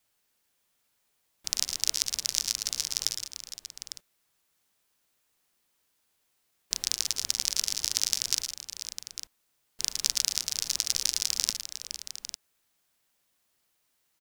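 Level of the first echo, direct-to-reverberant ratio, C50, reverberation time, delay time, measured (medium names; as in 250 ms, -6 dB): -10.5 dB, no reverb, no reverb, no reverb, 109 ms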